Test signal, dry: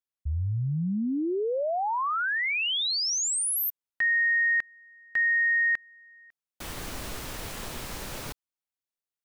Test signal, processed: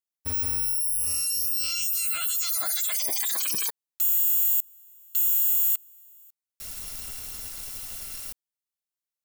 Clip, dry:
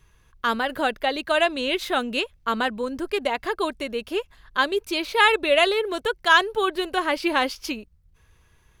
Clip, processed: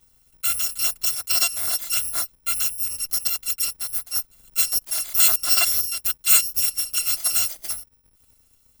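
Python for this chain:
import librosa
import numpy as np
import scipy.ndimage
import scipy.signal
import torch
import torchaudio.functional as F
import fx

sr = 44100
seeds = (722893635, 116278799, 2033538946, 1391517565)

y = fx.bit_reversed(x, sr, seeds[0], block=256)
y = fx.high_shelf(y, sr, hz=4300.0, db=7.5)
y = F.gain(torch.from_numpy(y), -5.5).numpy()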